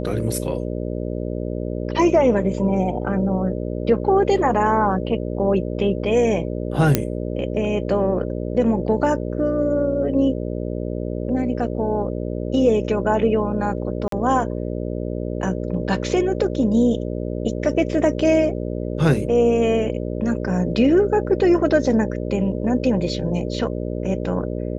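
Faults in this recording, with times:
buzz 60 Hz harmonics 10 -26 dBFS
6.95 pop -1 dBFS
14.08–14.12 gap 43 ms

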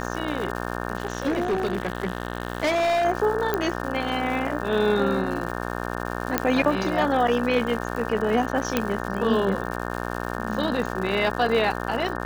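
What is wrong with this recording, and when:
buzz 60 Hz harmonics 30 -30 dBFS
crackle 220/s -31 dBFS
0.97–3.06 clipped -19.5 dBFS
3.54 pop -10 dBFS
6.38 pop -4 dBFS
8.77 pop -6 dBFS

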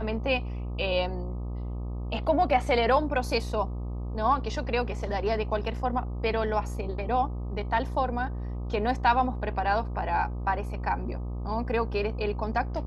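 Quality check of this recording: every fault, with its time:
buzz 60 Hz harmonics 21 -33 dBFS

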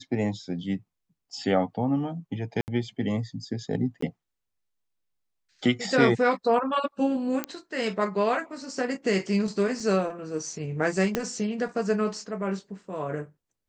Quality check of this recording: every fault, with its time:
2.61–2.68 gap 69 ms
4.01–4.02 gap 14 ms
7.44 pop -12 dBFS
9.8 gap 3.1 ms
11.15 pop -10 dBFS

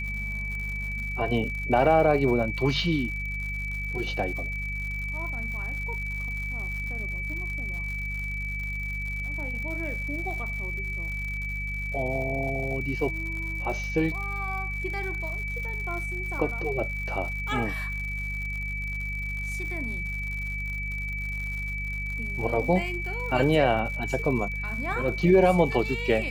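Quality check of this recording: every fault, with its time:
crackle 130/s -35 dBFS
hum 50 Hz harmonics 4 -34 dBFS
tone 2300 Hz -32 dBFS

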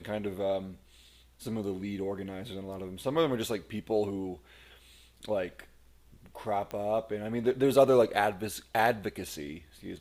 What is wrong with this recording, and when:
6.71 pop -23 dBFS

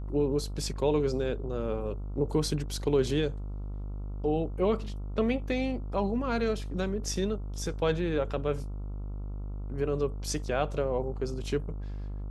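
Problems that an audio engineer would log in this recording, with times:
buzz 50 Hz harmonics 28 -36 dBFS

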